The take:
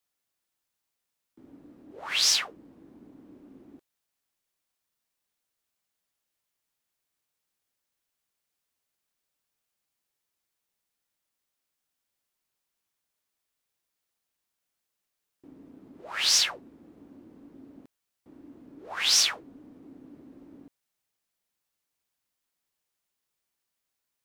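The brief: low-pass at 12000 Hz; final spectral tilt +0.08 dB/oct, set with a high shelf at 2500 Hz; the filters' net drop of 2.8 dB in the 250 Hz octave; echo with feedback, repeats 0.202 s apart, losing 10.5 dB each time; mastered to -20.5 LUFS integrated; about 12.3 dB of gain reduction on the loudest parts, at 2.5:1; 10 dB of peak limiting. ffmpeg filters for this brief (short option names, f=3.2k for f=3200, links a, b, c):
-af "lowpass=12k,equalizer=f=250:t=o:g=-3.5,highshelf=f=2.5k:g=8,acompressor=threshold=-31dB:ratio=2.5,alimiter=level_in=0.5dB:limit=-24dB:level=0:latency=1,volume=-0.5dB,aecho=1:1:202|404|606:0.299|0.0896|0.0269,volume=16.5dB"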